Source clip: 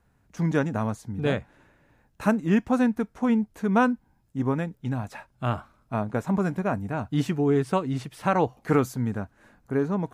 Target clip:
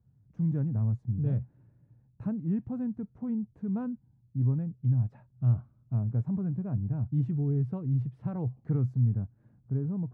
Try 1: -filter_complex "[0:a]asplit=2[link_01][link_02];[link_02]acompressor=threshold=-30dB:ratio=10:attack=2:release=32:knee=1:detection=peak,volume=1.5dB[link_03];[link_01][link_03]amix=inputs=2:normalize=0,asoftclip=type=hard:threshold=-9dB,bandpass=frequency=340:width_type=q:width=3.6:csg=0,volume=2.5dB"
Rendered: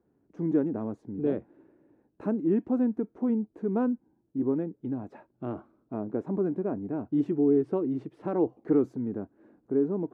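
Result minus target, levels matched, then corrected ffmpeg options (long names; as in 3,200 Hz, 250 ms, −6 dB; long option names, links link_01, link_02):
125 Hz band −14.0 dB
-filter_complex "[0:a]asplit=2[link_01][link_02];[link_02]acompressor=threshold=-30dB:ratio=10:attack=2:release=32:knee=1:detection=peak,volume=1.5dB[link_03];[link_01][link_03]amix=inputs=2:normalize=0,asoftclip=type=hard:threshold=-9dB,bandpass=frequency=120:width_type=q:width=3.6:csg=0,volume=2.5dB"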